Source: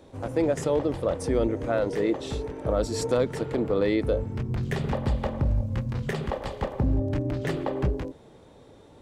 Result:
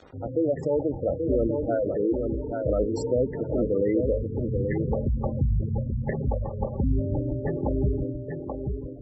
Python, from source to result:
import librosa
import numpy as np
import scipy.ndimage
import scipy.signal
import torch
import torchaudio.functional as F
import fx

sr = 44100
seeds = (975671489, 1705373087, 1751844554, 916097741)

y = fx.echo_feedback(x, sr, ms=833, feedback_pct=27, wet_db=-5)
y = fx.quant_dither(y, sr, seeds[0], bits=8, dither='none')
y = fx.spec_gate(y, sr, threshold_db=-15, keep='strong')